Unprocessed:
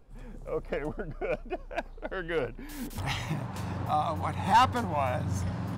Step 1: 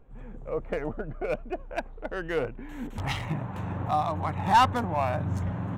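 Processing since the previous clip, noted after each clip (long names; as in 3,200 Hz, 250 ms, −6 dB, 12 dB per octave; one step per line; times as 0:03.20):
adaptive Wiener filter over 9 samples
level +2 dB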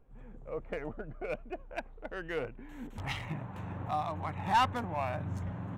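dynamic equaliser 2,300 Hz, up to +4 dB, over −48 dBFS, Q 1.4
level −7.5 dB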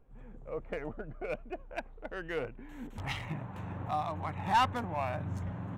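no processing that can be heard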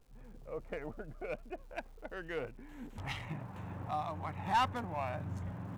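surface crackle 430 per second −56 dBFS
level −3.5 dB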